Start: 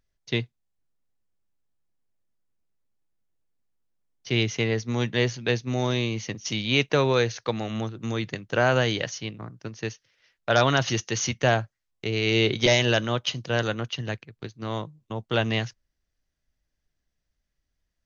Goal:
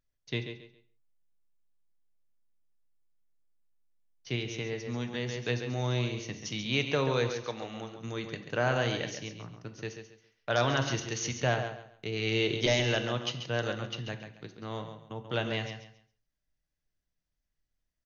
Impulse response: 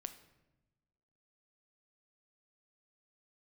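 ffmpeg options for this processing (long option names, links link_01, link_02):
-filter_complex "[0:a]asettb=1/sr,asplit=3[link_01][link_02][link_03];[link_01]atrim=end=7.394[link_04];[link_02]atrim=start=7.39:end=8.01,asetpts=PTS-STARTPTS,afade=type=in:duration=0.004:curve=qsin,afade=type=out:start_time=0.616:duration=0.004:curve=qsin,lowshelf=frequency=230:gain=-10[link_05];[link_03]atrim=start=8.006[link_06];[link_04][link_05]acrossfade=duration=0.004:curve1=hsin:curve2=qsin[link_07];[link_07][link_06]acrossfade=duration=0.004:curve1=qsin:curve2=hsin,aecho=1:1:137|274|411:0.355|0.0887|0.0222,asettb=1/sr,asplit=3[link_08][link_09][link_10];[link_08]atrim=end=4.354[link_11];[link_09]atrim=start=4.35:end=5.29,asetpts=PTS-STARTPTS,afade=type=in:duration=0.004:curve=qsin,afade=type=out:start_time=0.936:duration=0.004:curve=qsin,acompressor=threshold=-26dB:ratio=2.5[link_12];[link_10]atrim=start=5.286[link_13];[link_11][link_12]acrossfade=duration=0.004:curve1=hsin:curve2=qsin[link_14];[link_14][link_13]acrossfade=duration=0.004:curve1=qsin:curve2=hsin[link_15];[1:a]atrim=start_sample=2205,afade=type=out:start_time=0.22:duration=0.01,atrim=end_sample=10143[link_16];[link_15][link_16]afir=irnorm=-1:irlink=0,volume=-3.5dB"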